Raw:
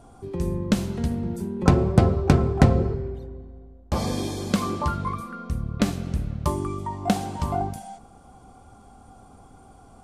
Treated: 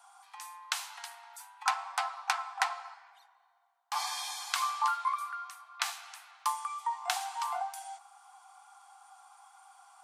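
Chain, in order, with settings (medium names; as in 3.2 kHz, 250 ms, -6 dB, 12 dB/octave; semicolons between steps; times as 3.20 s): steep high-pass 790 Hz 72 dB/octave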